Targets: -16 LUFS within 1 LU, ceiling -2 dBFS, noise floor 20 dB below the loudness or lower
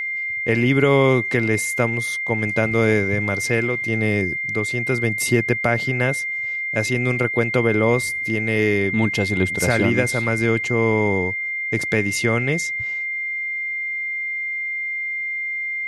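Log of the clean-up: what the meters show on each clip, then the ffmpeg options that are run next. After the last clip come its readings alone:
steady tone 2.1 kHz; tone level -23 dBFS; loudness -20.0 LUFS; peak level -4.0 dBFS; loudness target -16.0 LUFS
-> -af "bandreject=f=2100:w=30"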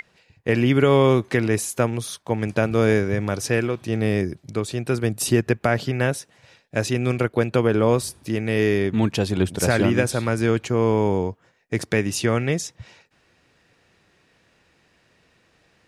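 steady tone not found; loudness -22.0 LUFS; peak level -5.0 dBFS; loudness target -16.0 LUFS
-> -af "volume=2,alimiter=limit=0.794:level=0:latency=1"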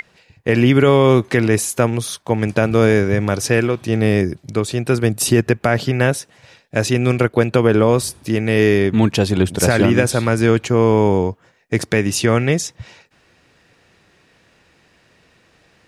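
loudness -16.5 LUFS; peak level -2.0 dBFS; noise floor -56 dBFS

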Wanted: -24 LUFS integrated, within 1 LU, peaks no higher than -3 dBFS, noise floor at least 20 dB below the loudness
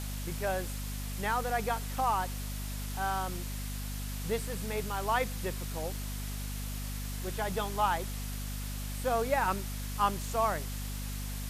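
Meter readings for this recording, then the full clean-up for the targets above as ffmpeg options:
hum 50 Hz; highest harmonic 250 Hz; hum level -35 dBFS; noise floor -37 dBFS; noise floor target -54 dBFS; loudness -34.0 LUFS; peak level -15.5 dBFS; loudness target -24.0 LUFS
-> -af "bandreject=f=50:t=h:w=6,bandreject=f=100:t=h:w=6,bandreject=f=150:t=h:w=6,bandreject=f=200:t=h:w=6,bandreject=f=250:t=h:w=6"
-af "afftdn=nr=17:nf=-37"
-af "volume=3.16"

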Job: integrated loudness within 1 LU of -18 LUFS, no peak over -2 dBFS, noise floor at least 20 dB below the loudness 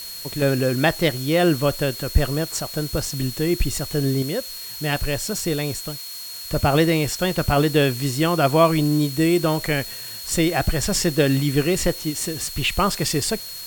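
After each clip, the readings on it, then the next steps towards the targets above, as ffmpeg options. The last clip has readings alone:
steady tone 4.3 kHz; tone level -35 dBFS; noise floor -34 dBFS; noise floor target -42 dBFS; loudness -21.5 LUFS; peak level -3.5 dBFS; loudness target -18.0 LUFS
-> -af "bandreject=f=4300:w=30"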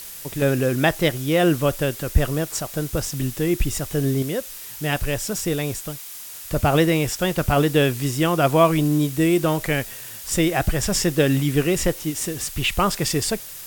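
steady tone not found; noise floor -37 dBFS; noise floor target -42 dBFS
-> -af "afftdn=nr=6:nf=-37"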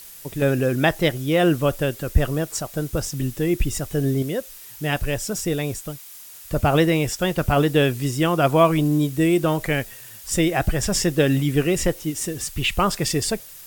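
noise floor -42 dBFS; loudness -21.5 LUFS; peak level -4.0 dBFS; loudness target -18.0 LUFS
-> -af "volume=1.5,alimiter=limit=0.794:level=0:latency=1"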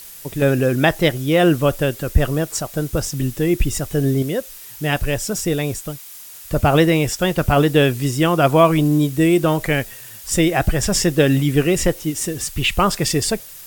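loudness -18.0 LUFS; peak level -2.0 dBFS; noise floor -38 dBFS

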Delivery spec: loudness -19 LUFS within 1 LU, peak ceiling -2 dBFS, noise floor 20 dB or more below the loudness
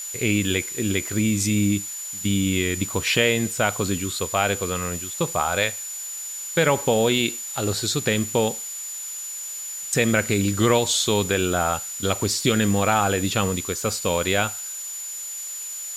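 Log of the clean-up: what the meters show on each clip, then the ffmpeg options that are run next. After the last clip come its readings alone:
steady tone 7 kHz; tone level -31 dBFS; noise floor -33 dBFS; noise floor target -43 dBFS; loudness -23.0 LUFS; peak level -4.5 dBFS; loudness target -19.0 LUFS
-> -af "bandreject=f=7000:w=30"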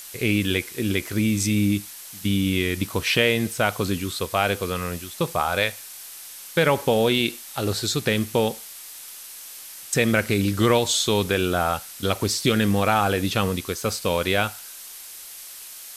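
steady tone not found; noise floor -40 dBFS; noise floor target -43 dBFS
-> -af "afftdn=nr=6:nf=-40"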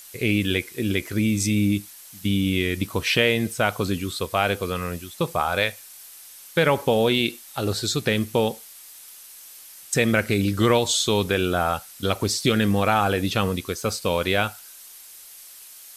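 noise floor -45 dBFS; loudness -23.0 LUFS; peak level -4.5 dBFS; loudness target -19.0 LUFS
-> -af "volume=1.58,alimiter=limit=0.794:level=0:latency=1"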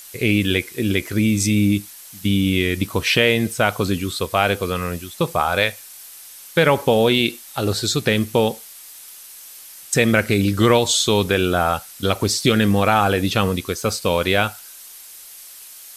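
loudness -19.0 LUFS; peak level -2.0 dBFS; noise floor -41 dBFS

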